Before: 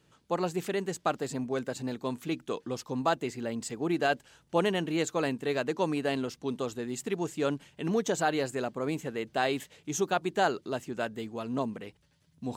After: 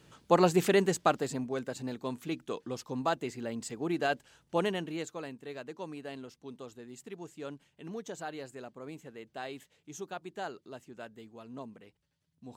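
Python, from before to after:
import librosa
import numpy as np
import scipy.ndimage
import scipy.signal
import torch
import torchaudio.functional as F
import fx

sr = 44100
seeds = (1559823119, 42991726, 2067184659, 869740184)

y = fx.gain(x, sr, db=fx.line((0.79, 6.5), (1.51, -3.0), (4.65, -3.0), (5.28, -12.5)))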